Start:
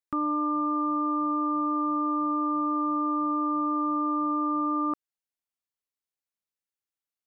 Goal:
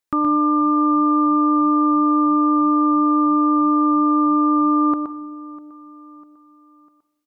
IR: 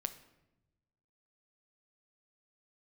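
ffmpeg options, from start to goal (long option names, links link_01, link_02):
-filter_complex "[0:a]aecho=1:1:649|1298|1947:0.0891|0.0419|0.0197,asplit=2[link_01][link_02];[1:a]atrim=start_sample=2205,adelay=121[link_03];[link_02][link_03]afir=irnorm=-1:irlink=0,volume=-5.5dB[link_04];[link_01][link_04]amix=inputs=2:normalize=0,volume=8.5dB"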